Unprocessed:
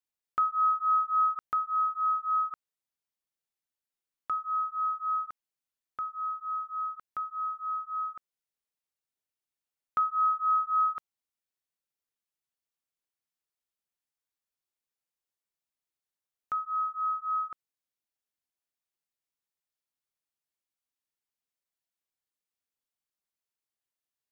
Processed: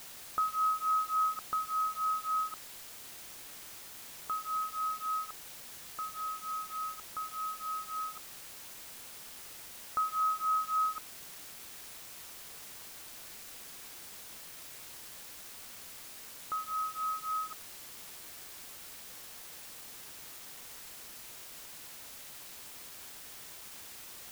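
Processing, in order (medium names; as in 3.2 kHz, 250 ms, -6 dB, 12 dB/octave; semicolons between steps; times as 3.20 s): low-pass 1.1 kHz 12 dB/octave; word length cut 8-bit, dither triangular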